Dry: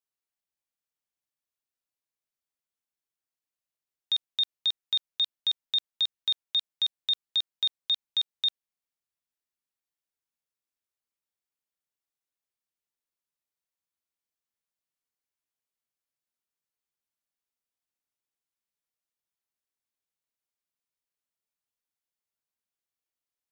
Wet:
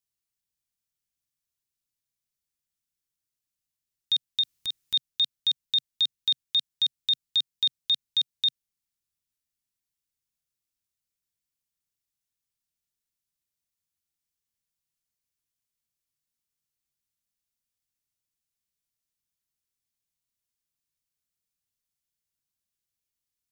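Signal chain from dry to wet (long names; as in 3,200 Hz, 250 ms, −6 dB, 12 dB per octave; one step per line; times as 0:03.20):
0:04.41–0:04.94: transient designer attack −11 dB, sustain +11 dB
drawn EQ curve 130 Hz 0 dB, 650 Hz −17 dB, 5,700 Hz −4 dB
level +9 dB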